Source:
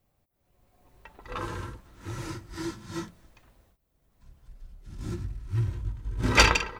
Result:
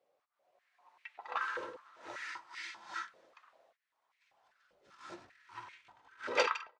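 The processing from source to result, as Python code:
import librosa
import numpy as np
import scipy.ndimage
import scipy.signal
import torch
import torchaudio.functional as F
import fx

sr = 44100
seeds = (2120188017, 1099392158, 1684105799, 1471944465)

y = fx.fade_out_tail(x, sr, length_s=1.07)
y = scipy.signal.sosfilt(scipy.signal.butter(2, 5000.0, 'lowpass', fs=sr, output='sos'), y)
y = fx.filter_held_highpass(y, sr, hz=5.1, low_hz=510.0, high_hz=2200.0)
y = y * librosa.db_to_amplitude(-4.5)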